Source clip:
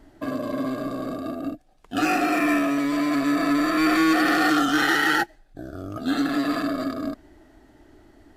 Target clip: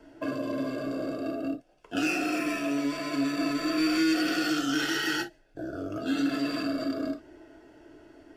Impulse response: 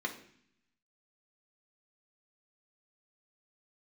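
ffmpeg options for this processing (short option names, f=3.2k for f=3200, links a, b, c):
-filter_complex "[0:a]acrossover=split=240|3000[a][b][c];[b]acompressor=threshold=-33dB:ratio=6[d];[a][d][c]amix=inputs=3:normalize=0[e];[1:a]atrim=start_sample=2205,atrim=end_sample=3969,asetrate=61740,aresample=44100[f];[e][f]afir=irnorm=-1:irlink=0"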